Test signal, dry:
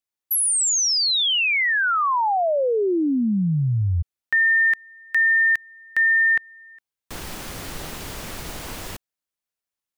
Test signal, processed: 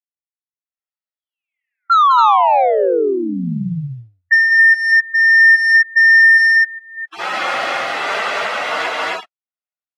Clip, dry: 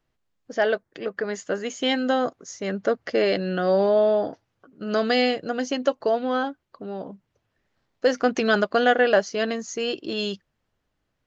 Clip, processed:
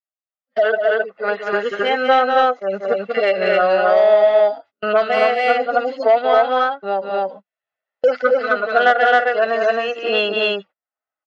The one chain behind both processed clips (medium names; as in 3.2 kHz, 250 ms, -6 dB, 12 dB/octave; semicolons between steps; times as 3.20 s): harmonic-percussive separation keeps harmonic; high-pass 720 Hz 12 dB/octave; gate -52 dBFS, range -38 dB; low-pass 2.5 kHz 12 dB/octave; comb 1.5 ms, depth 36%; level rider gain up to 14.5 dB; saturation -4 dBFS; tremolo triangle 1.5 Hz, depth 75%; on a send: loudspeakers at several distances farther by 64 m -7 dB, 91 m -1 dB; on the sum: three bands compressed up and down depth 70%; trim +2 dB